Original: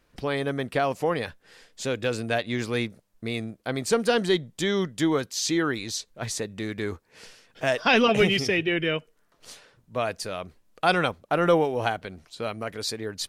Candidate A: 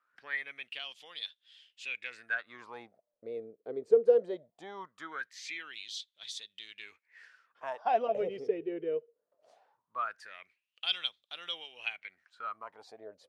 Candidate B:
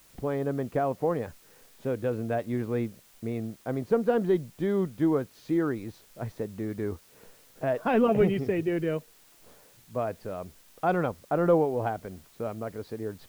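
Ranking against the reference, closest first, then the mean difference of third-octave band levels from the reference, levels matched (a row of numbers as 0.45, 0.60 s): B, A; 6.0, 12.5 dB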